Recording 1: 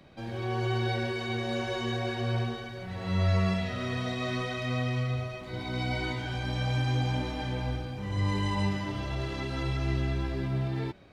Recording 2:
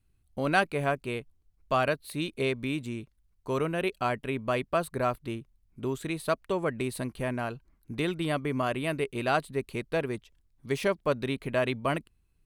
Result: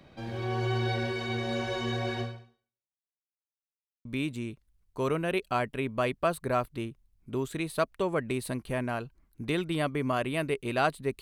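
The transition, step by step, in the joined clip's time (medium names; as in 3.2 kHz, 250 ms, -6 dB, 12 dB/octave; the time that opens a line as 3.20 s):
recording 1
2.21–3.12 s: fade out exponential
3.12–4.05 s: mute
4.05 s: go over to recording 2 from 2.55 s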